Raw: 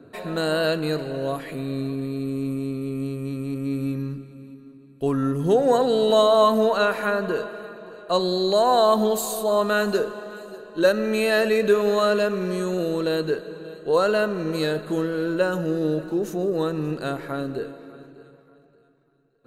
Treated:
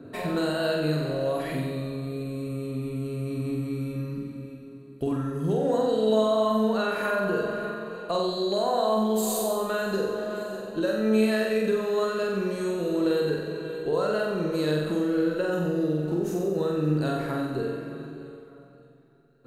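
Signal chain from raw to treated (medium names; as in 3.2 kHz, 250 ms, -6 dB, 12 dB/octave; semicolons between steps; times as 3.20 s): peaking EQ 110 Hz +5 dB 2.7 oct; compression 6:1, threshold -26 dBFS, peak gain reduction 13.5 dB; flutter echo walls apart 7.9 m, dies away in 1 s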